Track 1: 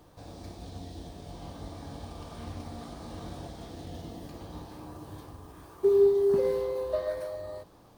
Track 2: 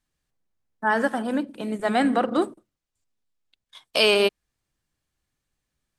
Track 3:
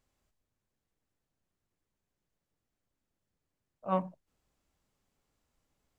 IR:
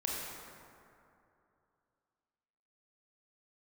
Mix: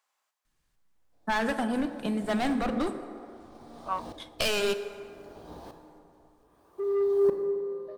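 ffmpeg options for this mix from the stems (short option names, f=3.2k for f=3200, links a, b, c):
-filter_complex "[0:a]equalizer=f=580:t=o:w=1.8:g=5.5,asoftclip=type=tanh:threshold=-15.5dB,aeval=exprs='val(0)*pow(10,-35*if(lt(mod(-0.63*n/s,1),2*abs(-0.63)/1000),1-mod(-0.63*n/s,1)/(2*abs(-0.63)/1000),(mod(-0.63*n/s,1)-2*abs(-0.63)/1000)/(1-2*abs(-0.63)/1000))/20)':c=same,adelay=950,volume=-4dB,asplit=2[a][b];[b]volume=-5dB[c];[1:a]volume=20.5dB,asoftclip=hard,volume=-20.5dB,adelay=450,volume=1dB,asplit=2[d][e];[e]volume=-17.5dB[f];[2:a]highpass=f=960:t=q:w=1.7,volume=3dB[g];[d][g]amix=inputs=2:normalize=0,asubboost=boost=5.5:cutoff=210,acompressor=threshold=-26dB:ratio=6,volume=0dB[h];[3:a]atrim=start_sample=2205[i];[c][f]amix=inputs=2:normalize=0[j];[j][i]afir=irnorm=-1:irlink=0[k];[a][h][k]amix=inputs=3:normalize=0,equalizer=f=86:t=o:w=1.4:g=-6.5"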